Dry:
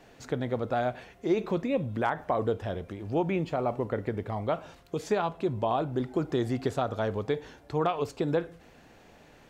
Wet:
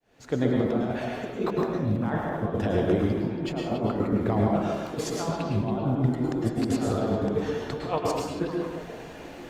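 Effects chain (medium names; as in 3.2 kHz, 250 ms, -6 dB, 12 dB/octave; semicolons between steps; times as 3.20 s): fade-in on the opening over 0.80 s; dynamic bell 280 Hz, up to +7 dB, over -41 dBFS, Q 0.78; compressor with a negative ratio -31 dBFS, ratio -0.5; repeats whose band climbs or falls 279 ms, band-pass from 3.4 kHz, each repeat -1.4 oct, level -7.5 dB; reverberation RT60 1.0 s, pre-delay 98 ms, DRR -1 dB; trim +2 dB; Opus 48 kbps 48 kHz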